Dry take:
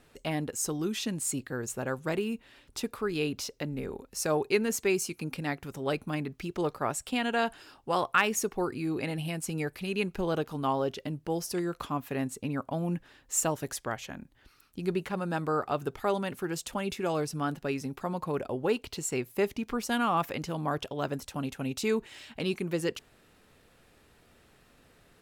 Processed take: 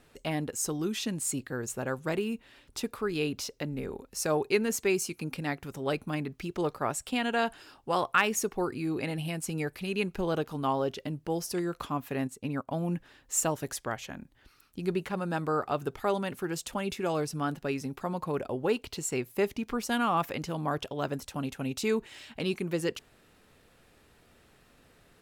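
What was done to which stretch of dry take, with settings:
12.27–12.68 upward expander, over -49 dBFS

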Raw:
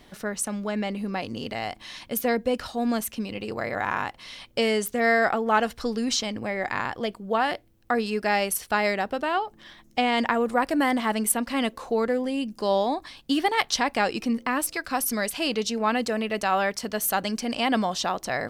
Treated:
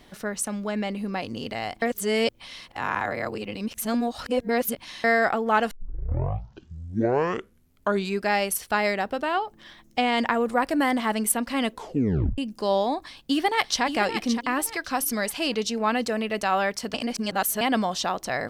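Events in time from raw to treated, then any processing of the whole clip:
1.82–5.04 reverse
5.71 tape start 2.59 s
11.73 tape stop 0.65 s
13.04–13.83 echo throw 0.57 s, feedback 30%, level -8.5 dB
16.94–17.61 reverse

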